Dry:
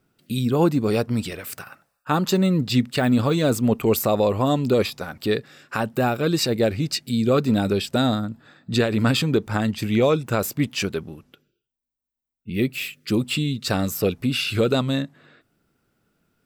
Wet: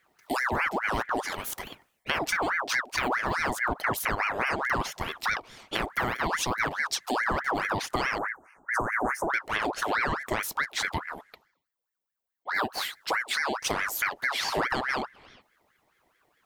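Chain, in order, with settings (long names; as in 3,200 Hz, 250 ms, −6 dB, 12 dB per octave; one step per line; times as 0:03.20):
0:08.18–0:09.30: Chebyshev band-stop filter 1,000–6,600 Hz, order 5
downward compressor, threshold −25 dBFS, peak gain reduction 11 dB
ring modulator whose carrier an LFO sweeps 1,200 Hz, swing 60%, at 4.7 Hz
level +2.5 dB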